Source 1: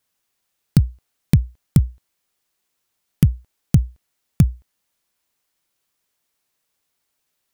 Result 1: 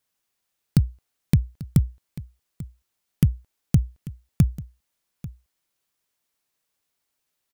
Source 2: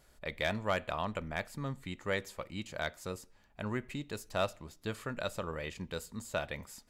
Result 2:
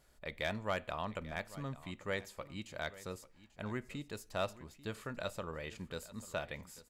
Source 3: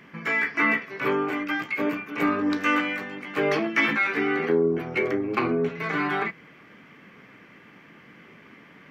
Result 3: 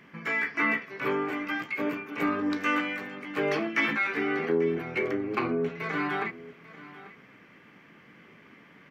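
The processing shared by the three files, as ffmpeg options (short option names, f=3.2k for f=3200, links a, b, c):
-af "aecho=1:1:841:0.133,volume=-4dB"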